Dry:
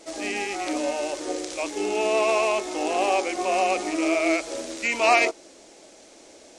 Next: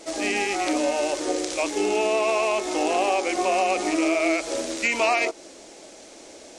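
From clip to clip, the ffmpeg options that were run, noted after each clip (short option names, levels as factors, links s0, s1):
-af "acompressor=threshold=0.0708:ratio=6,volume=1.68"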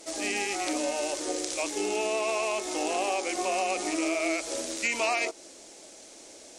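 -af "aemphasis=mode=production:type=cd,volume=0.473"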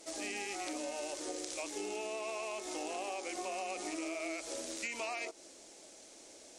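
-af "acompressor=threshold=0.0282:ratio=3,volume=0.473"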